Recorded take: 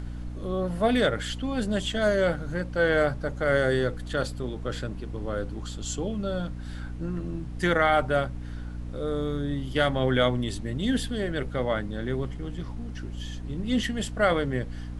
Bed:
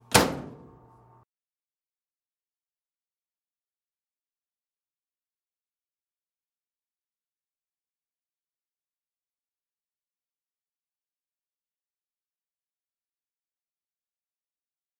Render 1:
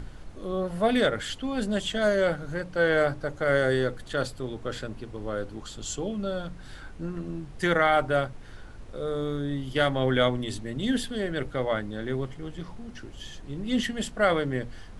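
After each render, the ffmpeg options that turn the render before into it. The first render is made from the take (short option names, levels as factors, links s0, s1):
-af "bandreject=f=60:t=h:w=6,bandreject=f=120:t=h:w=6,bandreject=f=180:t=h:w=6,bandreject=f=240:t=h:w=6,bandreject=f=300:t=h:w=6"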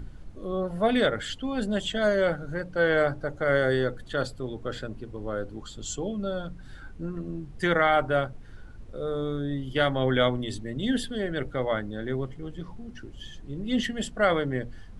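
-af "afftdn=nr=8:nf=-44"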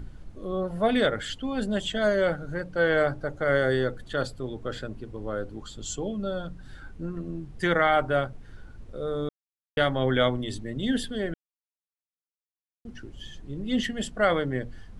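-filter_complex "[0:a]asettb=1/sr,asplit=3[s0][s1][s2];[s0]atrim=end=6.154[s3];[s1]atrim=start=6.15:end=6.67,asetpts=PTS-STARTPTS,afade=t=in:d=0.004:c=qsin,afade=t=out:st=0.516:d=0.004:c=qsin,bandreject=f=2200:w=12[s4];[s2]atrim=start=6.666[s5];[s3][s4]acrossfade=d=0.004:c1=hsin:c2=qsin[s6];[s6][s5]acrossfade=d=0.004:c1=qsin:c2=hsin,asplit=5[s7][s8][s9][s10][s11];[s7]atrim=end=9.29,asetpts=PTS-STARTPTS,afade=t=out:st=9.286:d=0.004:c=hsin[s12];[s8]atrim=start=9.29:end=9.77,asetpts=PTS-STARTPTS,volume=0[s13];[s9]atrim=start=9.77:end=11.34,asetpts=PTS-STARTPTS,afade=t=in:d=0.004:c=hsin,afade=t=out:st=1.566:d=0.004:c=hsin[s14];[s10]atrim=start=11.34:end=12.85,asetpts=PTS-STARTPTS,volume=0[s15];[s11]atrim=start=12.85,asetpts=PTS-STARTPTS,afade=t=in:d=0.004:c=hsin[s16];[s12][s13][s14][s15][s16]concat=n=5:v=0:a=1"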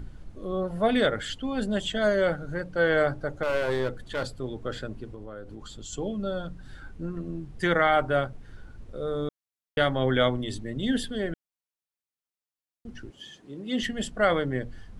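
-filter_complex "[0:a]asettb=1/sr,asplit=3[s0][s1][s2];[s0]atrim=end=3.434[s3];[s1]atrim=start=3.43:end=4.25,asetpts=PTS-STARTPTS,afade=t=in:d=0.004:c=qsin,afade=t=out:st=0.816:d=0.004:c=qsin,aeval=exprs='clip(val(0),-1,0.0398)':c=same[s4];[s2]atrim=start=4.246[s5];[s3][s4]acrossfade=d=0.004:c1=hsin:c2=qsin[s6];[s6][s5]acrossfade=d=0.004:c1=qsin:c2=hsin,asettb=1/sr,asplit=3[s7][s8][s9];[s7]atrim=end=5.144[s10];[s8]atrim=start=5.14:end=5.93,asetpts=PTS-STARTPTS,afade=t=in:d=0.004:c=qsin,afade=t=out:st=0.786:d=0.004:c=qsin,acompressor=threshold=0.0141:ratio=4:attack=3.2:release=140:knee=1:detection=peak[s11];[s9]atrim=start=5.926[s12];[s10][s11]acrossfade=d=0.004:c1=hsin:c2=qsin[s13];[s13][s12]acrossfade=d=0.004:c1=qsin:c2=hsin,asettb=1/sr,asplit=3[s14][s15][s16];[s14]atrim=end=13.104[s17];[s15]atrim=start=13.1:end=13.81,asetpts=PTS-STARTPTS,afade=t=in:d=0.004:c=qsin,afade=t=out:st=0.706:d=0.004:c=qsin,highpass=240[s18];[s16]atrim=start=13.806[s19];[s17][s18]acrossfade=d=0.004:c1=hsin:c2=qsin[s20];[s20][s19]acrossfade=d=0.004:c1=qsin:c2=hsin"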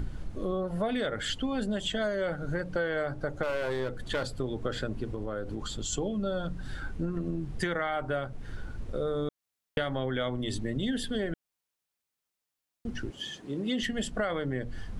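-filter_complex "[0:a]asplit=2[s0][s1];[s1]alimiter=limit=0.1:level=0:latency=1:release=38,volume=1.12[s2];[s0][s2]amix=inputs=2:normalize=0,acompressor=threshold=0.0398:ratio=6"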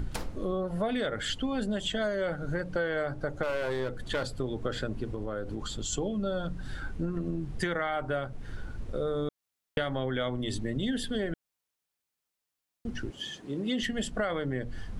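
-filter_complex "[1:a]volume=0.1[s0];[0:a][s0]amix=inputs=2:normalize=0"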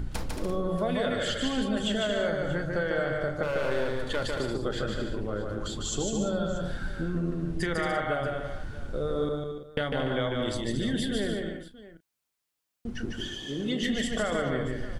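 -filter_complex "[0:a]asplit=2[s0][s1];[s1]adelay=34,volume=0.224[s2];[s0][s2]amix=inputs=2:normalize=0,aecho=1:1:150|226|292|342|633:0.708|0.398|0.299|0.2|0.133"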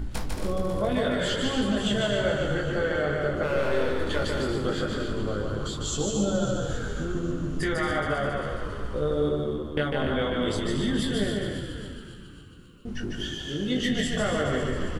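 -filter_complex "[0:a]asplit=2[s0][s1];[s1]adelay=20,volume=0.708[s2];[s0][s2]amix=inputs=2:normalize=0,asplit=9[s3][s4][s5][s6][s7][s8][s9][s10][s11];[s4]adelay=272,afreqshift=-73,volume=0.376[s12];[s5]adelay=544,afreqshift=-146,volume=0.226[s13];[s6]adelay=816,afreqshift=-219,volume=0.135[s14];[s7]adelay=1088,afreqshift=-292,volume=0.0813[s15];[s8]adelay=1360,afreqshift=-365,volume=0.049[s16];[s9]adelay=1632,afreqshift=-438,volume=0.0292[s17];[s10]adelay=1904,afreqshift=-511,volume=0.0176[s18];[s11]adelay=2176,afreqshift=-584,volume=0.0105[s19];[s3][s12][s13][s14][s15][s16][s17][s18][s19]amix=inputs=9:normalize=0"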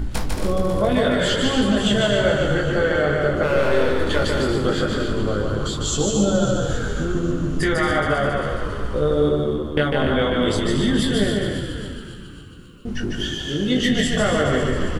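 -af "volume=2.24"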